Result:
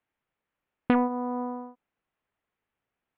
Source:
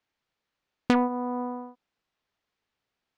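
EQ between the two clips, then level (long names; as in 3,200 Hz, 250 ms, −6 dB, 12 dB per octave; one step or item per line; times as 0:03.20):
low-pass filter 3,100 Hz 24 dB per octave
high-frequency loss of the air 170 metres
0.0 dB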